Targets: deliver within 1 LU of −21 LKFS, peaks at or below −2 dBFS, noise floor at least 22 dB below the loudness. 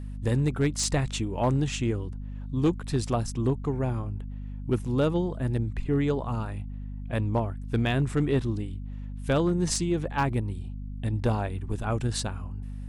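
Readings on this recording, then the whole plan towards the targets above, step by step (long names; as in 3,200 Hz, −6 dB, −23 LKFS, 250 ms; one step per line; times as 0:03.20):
share of clipped samples 0.5%; peaks flattened at −17.0 dBFS; mains hum 50 Hz; hum harmonics up to 250 Hz; level of the hum −34 dBFS; integrated loudness −28.5 LKFS; sample peak −17.0 dBFS; target loudness −21.0 LKFS
→ clipped peaks rebuilt −17 dBFS
mains-hum notches 50/100/150/200/250 Hz
level +7.5 dB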